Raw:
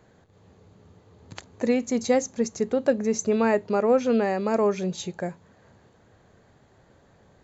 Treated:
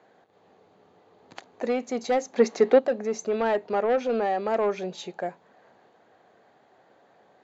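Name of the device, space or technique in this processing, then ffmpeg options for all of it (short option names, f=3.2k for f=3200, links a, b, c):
intercom: -filter_complex "[0:a]highpass=320,lowpass=4.3k,equalizer=f=740:t=o:w=0.32:g=7,asoftclip=type=tanh:threshold=-17.5dB,asplit=3[a][b][c];[a]afade=t=out:st=2.33:d=0.02[d];[b]equalizer=f=125:t=o:w=1:g=-4,equalizer=f=250:t=o:w=1:g=9,equalizer=f=500:t=o:w=1:g=7,equalizer=f=1k:t=o:w=1:g=6,equalizer=f=2k:t=o:w=1:g=9,equalizer=f=4k:t=o:w=1:g=8,afade=t=in:st=2.33:d=0.02,afade=t=out:st=2.78:d=0.02[e];[c]afade=t=in:st=2.78:d=0.02[f];[d][e][f]amix=inputs=3:normalize=0"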